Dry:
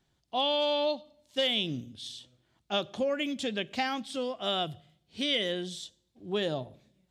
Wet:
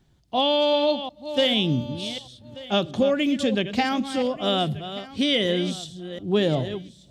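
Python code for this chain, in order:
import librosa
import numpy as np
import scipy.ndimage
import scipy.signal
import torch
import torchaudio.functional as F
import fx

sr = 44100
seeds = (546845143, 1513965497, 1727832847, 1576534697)

p1 = fx.reverse_delay(x, sr, ms=364, wet_db=-11)
p2 = fx.low_shelf(p1, sr, hz=340.0, db=10.0)
p3 = p2 + fx.echo_single(p2, sr, ms=1184, db=-18.5, dry=0)
y = p3 * 10.0 ** (5.0 / 20.0)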